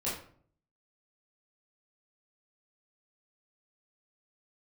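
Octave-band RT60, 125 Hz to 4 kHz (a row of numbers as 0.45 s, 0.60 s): 0.80 s, 0.70 s, 0.55 s, 0.50 s, 0.40 s, 0.35 s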